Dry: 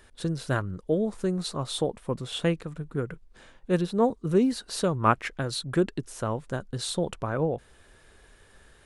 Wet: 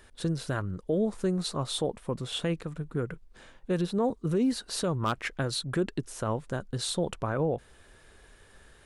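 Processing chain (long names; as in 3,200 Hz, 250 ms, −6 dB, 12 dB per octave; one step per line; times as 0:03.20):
wave folding −12 dBFS
brickwall limiter −19 dBFS, peak gain reduction 7 dB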